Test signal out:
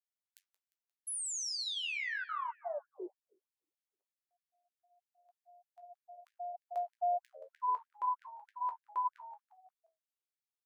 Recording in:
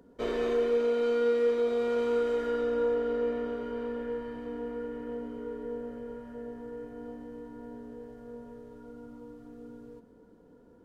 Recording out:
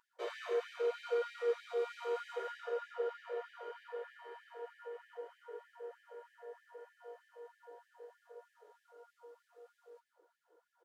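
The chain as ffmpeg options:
ffmpeg -i in.wav -filter_complex "[0:a]bandreject=frequency=50:width_type=h:width=6,bandreject=frequency=100:width_type=h:width=6,bandreject=frequency=150:width_type=h:width=6,bandreject=frequency=200:width_type=h:width=6,bandreject=frequency=250:width_type=h:width=6,bandreject=frequency=300:width_type=h:width=6,asplit=2[link_01][link_02];[link_02]adelay=17,volume=-12.5dB[link_03];[link_01][link_03]amix=inputs=2:normalize=0,flanger=delay=6.9:depth=6.1:regen=-66:speed=0.71:shape=sinusoidal,bandreject=frequency=450:width=12,asplit=5[link_04][link_05][link_06][link_07][link_08];[link_05]adelay=176,afreqshift=-84,volume=-18dB[link_09];[link_06]adelay=352,afreqshift=-168,volume=-23.8dB[link_10];[link_07]adelay=528,afreqshift=-252,volume=-29.7dB[link_11];[link_08]adelay=704,afreqshift=-336,volume=-35.5dB[link_12];[link_04][link_09][link_10][link_11][link_12]amix=inputs=5:normalize=0,flanger=delay=9.4:depth=8.7:regen=-66:speed=0.23:shape=sinusoidal,afftfilt=real='re*gte(b*sr/1024,320*pow(1600/320,0.5+0.5*sin(2*PI*3.2*pts/sr)))':imag='im*gte(b*sr/1024,320*pow(1600/320,0.5+0.5*sin(2*PI*3.2*pts/sr)))':win_size=1024:overlap=0.75,volume=3dB" out.wav

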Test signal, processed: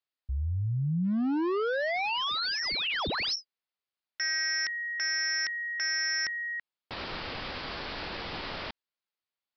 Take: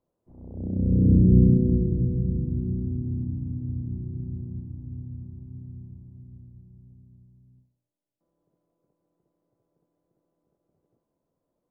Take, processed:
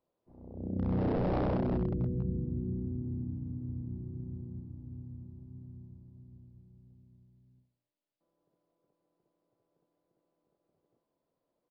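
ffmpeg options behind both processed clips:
ffmpeg -i in.wav -af "lowshelf=frequency=290:gain=-9.5,aresample=11025,aeval=exprs='0.0596*(abs(mod(val(0)/0.0596+3,4)-2)-1)':channel_layout=same,aresample=44100" out.wav

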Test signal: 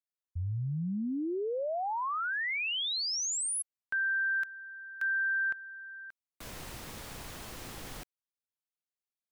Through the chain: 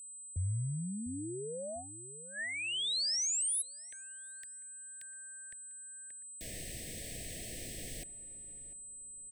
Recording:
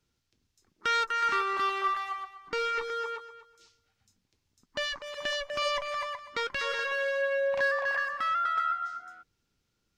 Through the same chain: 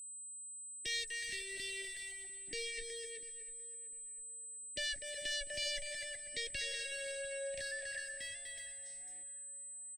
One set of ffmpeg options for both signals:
ffmpeg -i in.wav -filter_complex "[0:a]agate=range=-23dB:threshold=-54dB:ratio=16:release=122:detection=peak,adynamicequalizer=threshold=0.00355:dfrequency=1800:dqfactor=4.9:tfrequency=1800:tqfactor=4.9:attack=5:release=100:ratio=0.375:range=3.5:mode=boostabove:tftype=bell,acrossover=split=120|3300[link_01][link_02][link_03];[link_02]acompressor=threshold=-40dB:ratio=6:attack=0.17:release=469:knee=1:detection=rms[link_04];[link_01][link_04][link_03]amix=inputs=3:normalize=0,aeval=exprs='val(0)+0.00501*sin(2*PI*8100*n/s)':channel_layout=same,asuperstop=centerf=1100:order=20:qfactor=1.1,asplit=2[link_05][link_06];[link_06]adelay=697,lowpass=frequency=1300:poles=1,volume=-15dB,asplit=2[link_07][link_08];[link_08]adelay=697,lowpass=frequency=1300:poles=1,volume=0.38,asplit=2[link_09][link_10];[link_10]adelay=697,lowpass=frequency=1300:poles=1,volume=0.38[link_11];[link_07][link_09][link_11]amix=inputs=3:normalize=0[link_12];[link_05][link_12]amix=inputs=2:normalize=0" out.wav

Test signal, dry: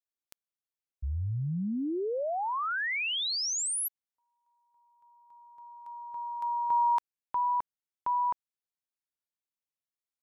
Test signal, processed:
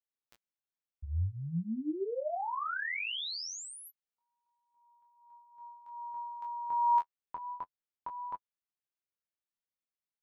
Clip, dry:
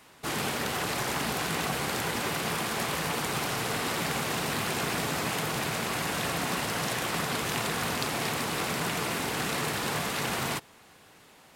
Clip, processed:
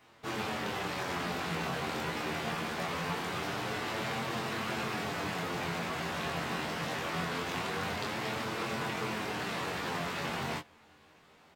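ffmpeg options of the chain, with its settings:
ffmpeg -i in.wav -filter_complex "[0:a]equalizer=frequency=11000:width_type=o:width=1.3:gain=-14,flanger=delay=8.8:depth=4.3:regen=21:speed=0.23:shape=sinusoidal,asplit=2[link_01][link_02];[link_02]adelay=23,volume=-3dB[link_03];[link_01][link_03]amix=inputs=2:normalize=0,volume=-2dB" out.wav

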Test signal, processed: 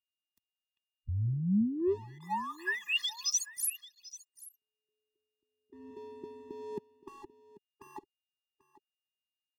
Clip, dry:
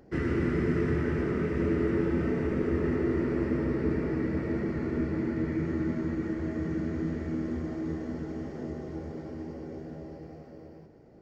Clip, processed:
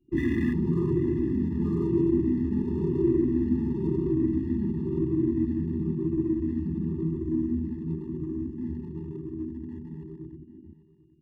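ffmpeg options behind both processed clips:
ffmpeg -i in.wav -filter_complex "[0:a]afftfilt=real='re*pow(10,12/40*sin(2*PI*(0.69*log(max(b,1)*sr/1024/100)/log(2)-(-0.97)*(pts-256)/sr)))':imag='im*pow(10,12/40*sin(2*PI*(0.69*log(max(b,1)*sr/1024/100)/log(2)-(-0.97)*(pts-256)/sr)))':win_size=1024:overlap=0.75,bandreject=frequency=670:width=12,afwtdn=0.0224,adynamicequalizer=threshold=0.00355:dfrequency=730:dqfactor=2.5:tfrequency=730:tqfactor=2.5:attack=5:release=100:ratio=0.375:range=2:mode=cutabove:tftype=bell,acrossover=split=130|530[link_01][link_02][link_03];[link_01]alimiter=level_in=10dB:limit=-24dB:level=0:latency=1:release=88,volume=-10dB[link_04];[link_03]aeval=exprs='sgn(val(0))*max(abs(val(0))-0.00251,0)':channel_layout=same[link_05];[link_04][link_02][link_05]amix=inputs=3:normalize=0,aeval=exprs='val(0)+0.00447*sin(2*PI*3000*n/s)':channel_layout=same,asplit=2[link_06][link_07];[link_07]aecho=0:1:790:0.126[link_08];[link_06][link_08]amix=inputs=2:normalize=0,afftfilt=real='re*eq(mod(floor(b*sr/1024/410),2),0)':imag='im*eq(mod(floor(b*sr/1024/410),2),0)':win_size=1024:overlap=0.75,volume=2.5dB" out.wav

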